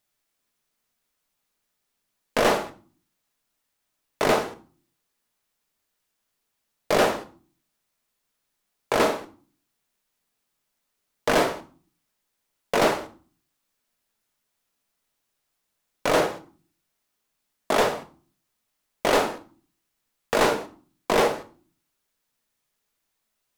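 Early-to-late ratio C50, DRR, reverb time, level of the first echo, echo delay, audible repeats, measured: 15.0 dB, 7.5 dB, 0.45 s, no echo, no echo, no echo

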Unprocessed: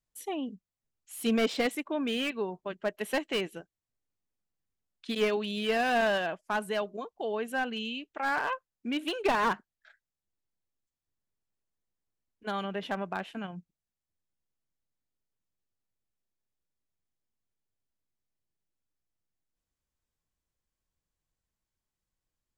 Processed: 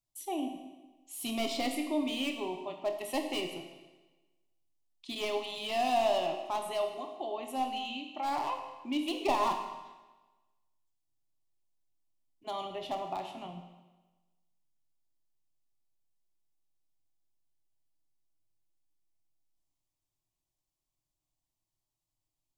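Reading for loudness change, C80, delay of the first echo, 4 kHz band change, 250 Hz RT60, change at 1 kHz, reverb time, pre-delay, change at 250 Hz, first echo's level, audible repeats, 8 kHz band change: -2.5 dB, 8.0 dB, no echo, -1.5 dB, 1.2 s, 0.0 dB, 1.2 s, 19 ms, -3.0 dB, no echo, no echo, +1.0 dB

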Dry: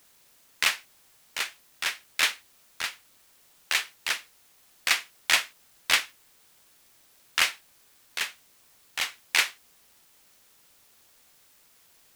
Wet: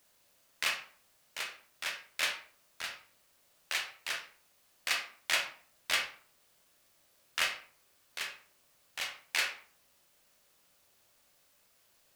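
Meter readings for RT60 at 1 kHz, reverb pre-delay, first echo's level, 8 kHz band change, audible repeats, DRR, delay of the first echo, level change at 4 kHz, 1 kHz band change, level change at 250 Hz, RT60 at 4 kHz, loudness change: 0.45 s, 18 ms, no echo, -8.5 dB, no echo, 2.5 dB, no echo, -7.5 dB, -6.5 dB, -7.0 dB, 0.30 s, -8.0 dB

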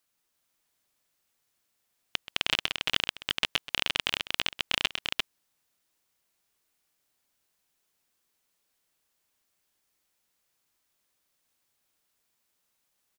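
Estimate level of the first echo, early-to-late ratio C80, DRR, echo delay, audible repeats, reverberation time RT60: -16.0 dB, no reverb, no reverb, 129 ms, 2, no reverb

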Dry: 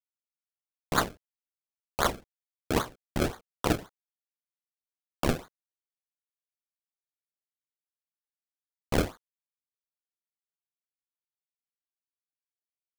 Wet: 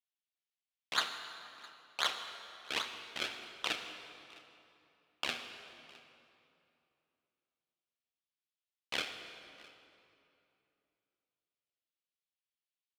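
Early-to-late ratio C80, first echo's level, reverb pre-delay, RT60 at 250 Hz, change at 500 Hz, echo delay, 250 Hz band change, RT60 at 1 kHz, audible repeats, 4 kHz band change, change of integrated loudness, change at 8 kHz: 8.0 dB, -23.0 dB, 21 ms, 3.2 s, -16.0 dB, 660 ms, -21.5 dB, 2.7 s, 1, +3.0 dB, -7.0 dB, -7.5 dB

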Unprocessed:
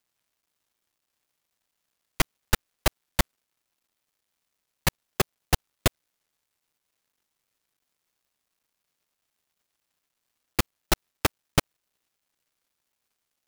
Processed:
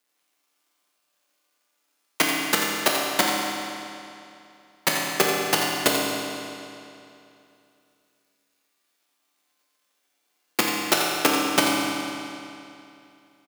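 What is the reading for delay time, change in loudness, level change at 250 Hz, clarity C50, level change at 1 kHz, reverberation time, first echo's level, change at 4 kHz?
86 ms, +5.5 dB, +7.5 dB, -1.5 dB, +8.5 dB, 2.7 s, -8.0 dB, +8.0 dB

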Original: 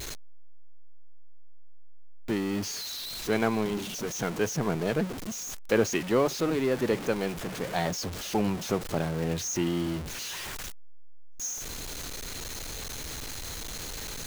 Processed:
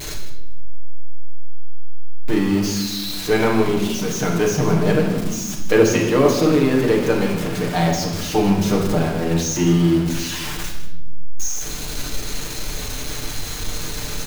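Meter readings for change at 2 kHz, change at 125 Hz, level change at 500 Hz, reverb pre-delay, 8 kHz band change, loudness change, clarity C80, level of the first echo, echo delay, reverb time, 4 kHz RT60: +9.0 dB, +13.0 dB, +10.0 dB, 7 ms, +8.0 dB, +10.5 dB, 6.5 dB, -12.5 dB, 157 ms, 0.90 s, 0.70 s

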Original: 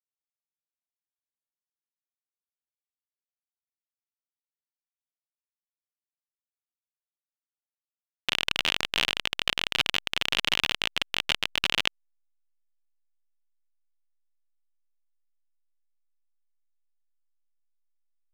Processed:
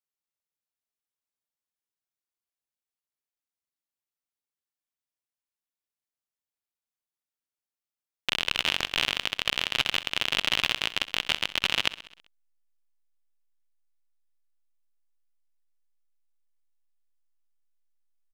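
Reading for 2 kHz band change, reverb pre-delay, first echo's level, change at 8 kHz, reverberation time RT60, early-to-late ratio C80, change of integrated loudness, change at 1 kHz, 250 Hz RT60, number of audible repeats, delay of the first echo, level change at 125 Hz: 0.0 dB, no reverb, -16.0 dB, 0.0 dB, no reverb, no reverb, 0.0 dB, 0.0 dB, no reverb, 5, 65 ms, 0.0 dB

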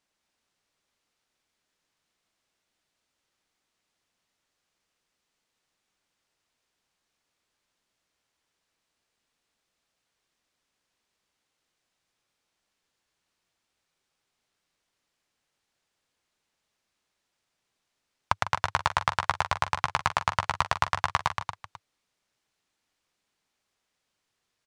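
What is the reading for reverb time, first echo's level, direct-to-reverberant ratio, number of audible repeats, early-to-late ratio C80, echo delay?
no reverb, -12.0 dB, no reverb, 3, no reverb, 152 ms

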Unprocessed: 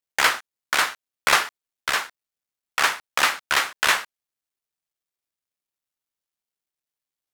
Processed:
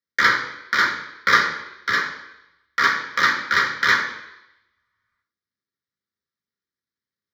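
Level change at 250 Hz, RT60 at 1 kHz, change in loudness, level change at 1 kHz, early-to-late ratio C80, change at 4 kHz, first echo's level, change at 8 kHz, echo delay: +6.5 dB, 0.85 s, +2.5 dB, +2.5 dB, 9.5 dB, -1.5 dB, no echo, -9.0 dB, no echo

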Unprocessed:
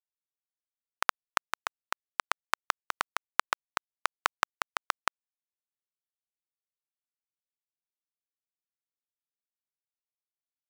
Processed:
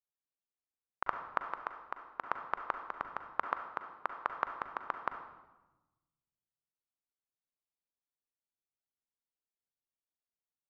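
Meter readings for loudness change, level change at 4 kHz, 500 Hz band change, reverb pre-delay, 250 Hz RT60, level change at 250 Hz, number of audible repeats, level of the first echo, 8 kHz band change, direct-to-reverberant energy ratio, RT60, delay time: -6.5 dB, -21.0 dB, -1.5 dB, 38 ms, 1.5 s, -0.5 dB, no echo, no echo, under -30 dB, 6.5 dB, 1.1 s, no echo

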